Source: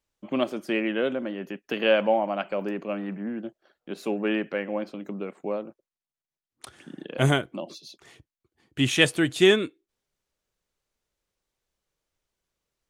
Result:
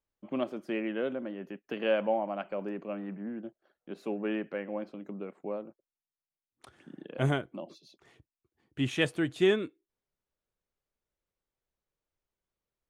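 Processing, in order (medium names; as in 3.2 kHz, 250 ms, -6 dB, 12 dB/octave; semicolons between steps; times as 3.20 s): treble shelf 2.9 kHz -10.5 dB; trim -6 dB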